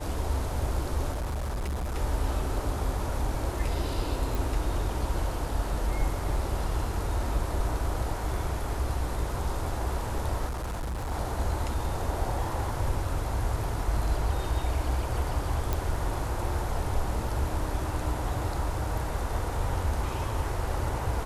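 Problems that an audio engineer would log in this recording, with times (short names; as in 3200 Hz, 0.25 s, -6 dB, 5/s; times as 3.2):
1.1–1.96 clipped -28 dBFS
4.35 pop
10.48–11.12 clipped -29.5 dBFS
15.73 pop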